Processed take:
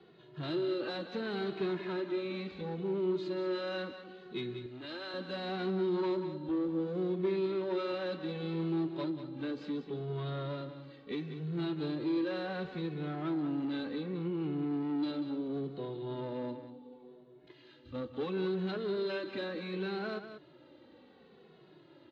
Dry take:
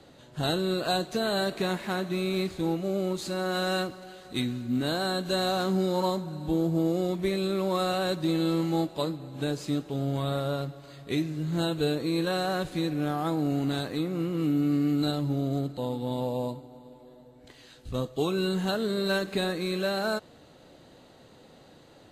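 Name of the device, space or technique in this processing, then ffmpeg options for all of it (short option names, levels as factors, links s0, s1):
barber-pole flanger into a guitar amplifier: -filter_complex "[0:a]asplit=2[s0][s1];[s1]adelay=2.3,afreqshift=-0.7[s2];[s0][s2]amix=inputs=2:normalize=1,asoftclip=type=tanh:threshold=0.0355,highpass=100,equalizer=f=100:t=q:w=4:g=-9,equalizer=f=360:t=q:w=4:g=8,equalizer=f=680:t=q:w=4:g=-6,lowpass=f=3800:w=0.5412,lowpass=f=3800:w=1.3066,asettb=1/sr,asplit=3[s3][s4][s5];[s3]atrim=end=4.664[s6];[s4]atrim=start=4.66:end=5.14,asetpts=PTS-STARTPTS,afade=t=in:d=0.004:c=qsin,afade=t=out:st=0.476:d=0.004:c=qsin,highpass=f=950:p=1[s7];[s5]atrim=start=5.136[s8];[s6][s7]acrossfade=d=0.004:c1=hsin:c2=qsin[s9];[s9][s8]acrossfade=d=0.004:c1=qsin:c2=hsin,aecho=1:1:189:0.316,volume=0.708"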